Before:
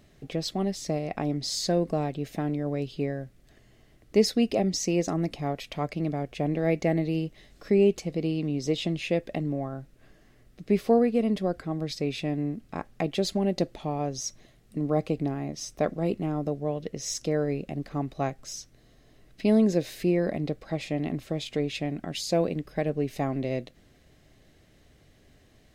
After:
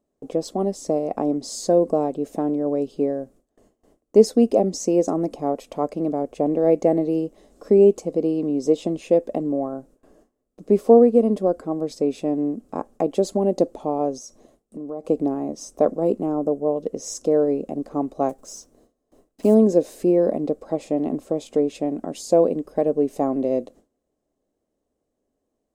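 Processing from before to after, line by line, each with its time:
14.18–15.05 s: compression 5:1, threshold -36 dBFS
16.35–16.76 s: peaking EQ 4 kHz -12 dB 0.86 oct
18.29–19.56 s: block-companded coder 5-bit
whole clip: gate with hold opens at -46 dBFS; graphic EQ 125/250/500/1000/2000/4000/8000 Hz -8/+10/+11/+9/-9/-6/+9 dB; trim -3.5 dB

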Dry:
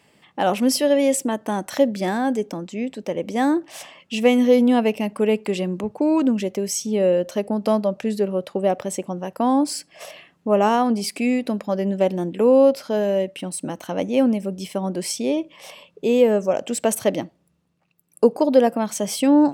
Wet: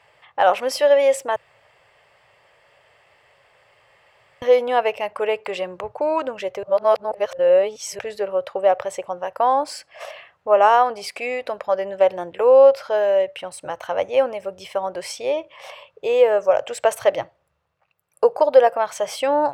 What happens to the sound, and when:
1.36–4.42 s: room tone
6.63–7.99 s: reverse
whole clip: FFT filter 120 Hz 0 dB, 220 Hz -25 dB, 530 Hz +4 dB, 1.4 kHz +7 dB, 9.3 kHz -9 dB

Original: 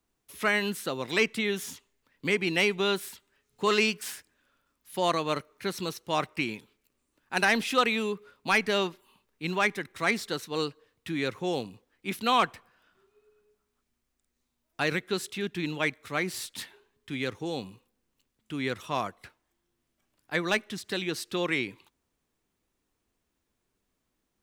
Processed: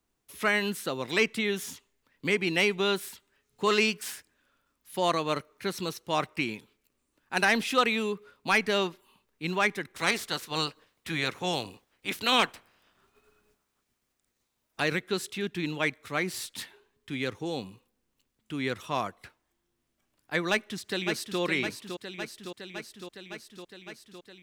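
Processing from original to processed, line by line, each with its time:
9.95–14.80 s: spectral peaks clipped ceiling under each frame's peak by 15 dB
20.50–21.40 s: echo throw 560 ms, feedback 75%, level -7 dB

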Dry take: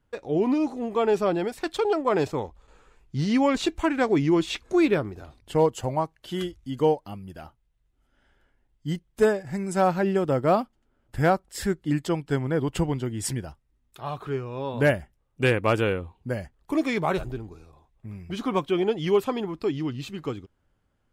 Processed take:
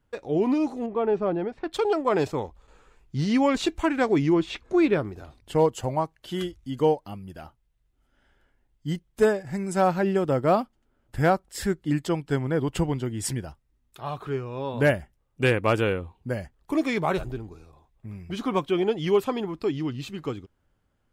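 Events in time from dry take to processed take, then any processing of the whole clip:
0.86–1.73 s: tape spacing loss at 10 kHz 36 dB
4.32–4.98 s: low-pass 2 kHz -> 4.1 kHz 6 dB/octave

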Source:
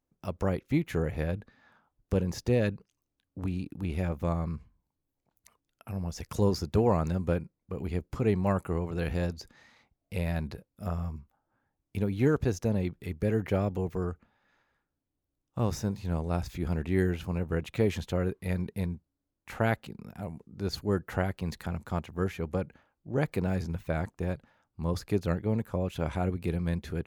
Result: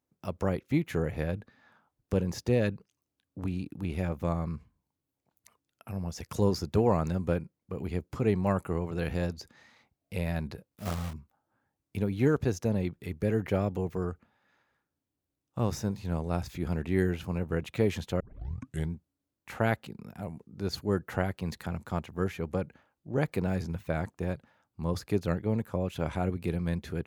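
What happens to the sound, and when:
10.69–11.14 s: block-companded coder 3-bit
18.20 s: tape start 0.72 s
whole clip: high-pass 74 Hz

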